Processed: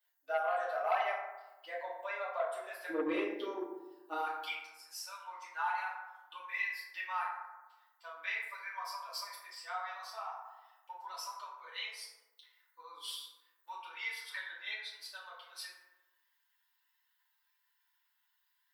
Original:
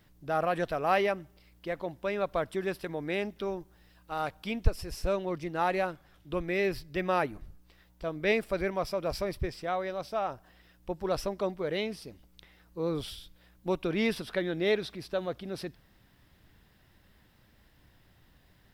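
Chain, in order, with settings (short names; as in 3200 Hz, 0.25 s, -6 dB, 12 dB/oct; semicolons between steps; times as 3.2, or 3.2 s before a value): per-bin expansion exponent 1.5; compressor 6:1, threshold -40 dBFS, peak gain reduction 21 dB; Chebyshev high-pass 630 Hz, order 4, from 2.88 s 330 Hz, from 4.18 s 930 Hz; FDN reverb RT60 1.1 s, low-frequency decay 1.2×, high-frequency decay 0.4×, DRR -9.5 dB; core saturation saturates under 950 Hz; gain +1.5 dB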